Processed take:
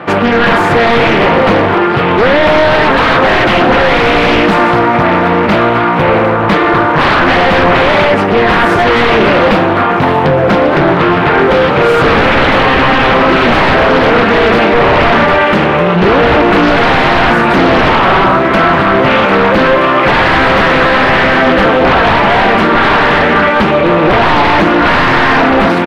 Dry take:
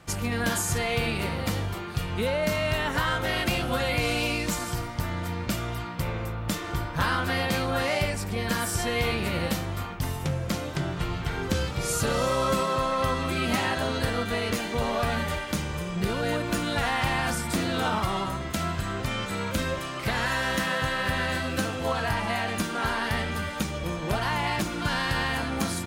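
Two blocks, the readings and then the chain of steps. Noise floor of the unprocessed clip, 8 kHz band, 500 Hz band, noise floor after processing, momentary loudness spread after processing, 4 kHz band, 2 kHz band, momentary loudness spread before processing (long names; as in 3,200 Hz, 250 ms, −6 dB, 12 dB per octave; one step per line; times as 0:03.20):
−34 dBFS, can't be measured, +22.0 dB, −10 dBFS, 2 LU, +15.5 dB, +20.0 dB, 6 LU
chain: high-pass filter 300 Hz 12 dB per octave
high-shelf EQ 4,700 Hz −9 dB
automatic gain control gain up to 3.5 dB
wave folding −26 dBFS
high-frequency loss of the air 480 metres
far-end echo of a speakerphone 120 ms, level −15 dB
boost into a limiter +33.5 dB
highs frequency-modulated by the lows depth 0.42 ms
level −1 dB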